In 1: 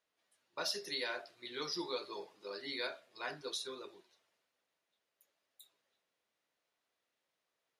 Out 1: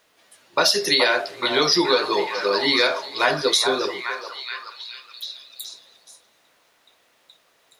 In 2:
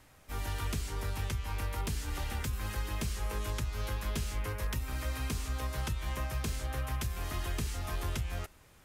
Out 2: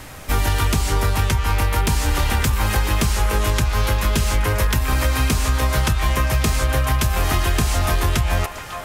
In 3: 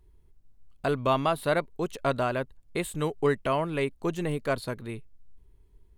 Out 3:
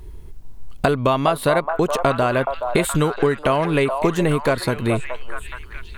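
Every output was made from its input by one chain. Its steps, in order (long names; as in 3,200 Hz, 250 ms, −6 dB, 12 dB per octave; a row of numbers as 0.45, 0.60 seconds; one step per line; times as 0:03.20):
downward compressor 6 to 1, threshold −38 dBFS
on a send: echo through a band-pass that steps 423 ms, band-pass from 810 Hz, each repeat 0.7 octaves, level −3.5 dB
on the sum: loudness normalisation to −20 LKFS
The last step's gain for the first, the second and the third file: +23.5, +23.0, +21.5 decibels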